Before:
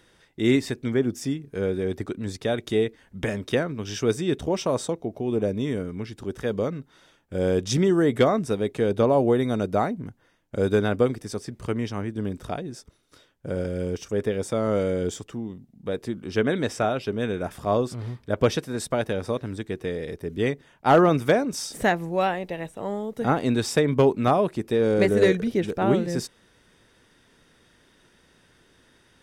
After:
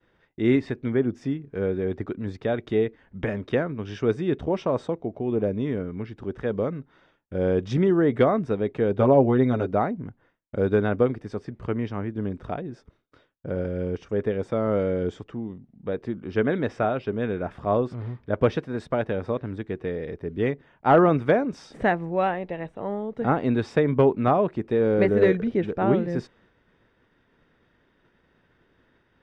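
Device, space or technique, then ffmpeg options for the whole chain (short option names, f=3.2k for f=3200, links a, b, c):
hearing-loss simulation: -filter_complex "[0:a]asettb=1/sr,asplit=3[a][b][c];[a]atrim=end=8.984[d];[b]atrim=start=8.98:end=9.72,asetpts=PTS-STARTPTS,afade=t=in:d=0.004:c=qsin,afade=t=out:st=0.736:d=0.004:c=qsin,aecho=1:1:7.5:0.72,atrim=end_sample=32634[e];[c]atrim=start=9.716[f];[d][e]acrossfade=d=0.004:c1=hsin:c2=qsin[g];[g][f]acrossfade=d=0.004:c1=qsin:c2=hsin,lowpass=2.2k,agate=range=-33dB:threshold=-56dB:ratio=3:detection=peak"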